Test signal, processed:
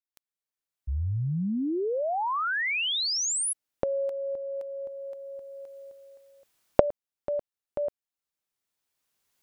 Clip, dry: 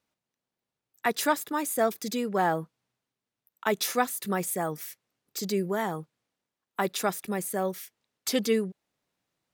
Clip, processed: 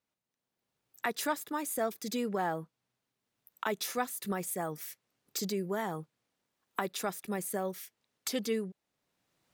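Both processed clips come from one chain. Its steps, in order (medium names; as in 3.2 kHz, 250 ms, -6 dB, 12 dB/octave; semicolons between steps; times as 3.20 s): recorder AGC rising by 15 dB/s; trim -7.5 dB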